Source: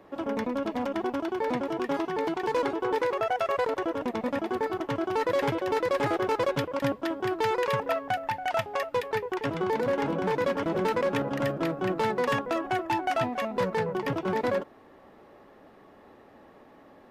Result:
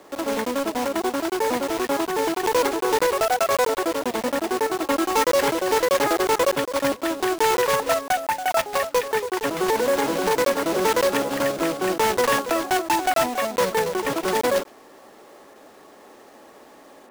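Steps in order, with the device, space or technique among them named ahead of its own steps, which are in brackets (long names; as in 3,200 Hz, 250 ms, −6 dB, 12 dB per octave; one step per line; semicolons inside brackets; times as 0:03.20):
early digital voice recorder (band-pass filter 280–3,600 Hz; one scale factor per block 3 bits)
0:04.82–0:05.27: comb filter 3.7 ms, depth 80%
level +6.5 dB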